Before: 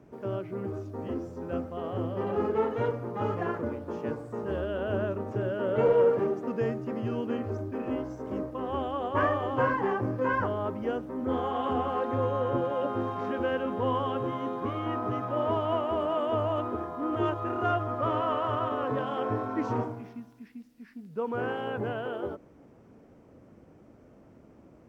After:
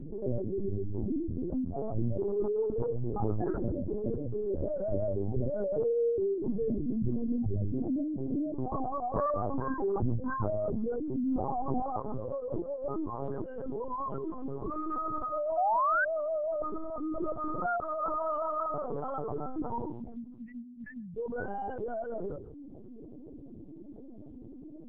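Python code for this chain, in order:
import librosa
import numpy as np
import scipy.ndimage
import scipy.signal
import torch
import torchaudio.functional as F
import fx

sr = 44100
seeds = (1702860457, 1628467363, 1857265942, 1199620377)

y = fx.spec_expand(x, sr, power=2.7)
y = fx.notch_comb(y, sr, f0_hz=520.0)
y = fx.quant_float(y, sr, bits=6)
y = scipy.signal.sosfilt(scipy.signal.butter(2, 53.0, 'highpass', fs=sr, output='sos'), y)
y = fx.peak_eq(y, sr, hz=89.0, db=fx.steps((0.0, 11.0), (11.82, -5.0), (13.26, -12.5)), octaves=2.7)
y = y + 10.0 ** (-22.5 / 20.0) * np.pad(y, (int(141 * sr / 1000.0), 0))[:len(y)]
y = fx.lpc_vocoder(y, sr, seeds[0], excitation='pitch_kept', order=8)
y = fx.spec_paint(y, sr, seeds[1], shape='rise', start_s=15.57, length_s=0.48, low_hz=680.0, high_hz=1600.0, level_db=-21.0)
y = fx.env_flatten(y, sr, amount_pct=50)
y = F.gain(torch.from_numpy(y), -7.0).numpy()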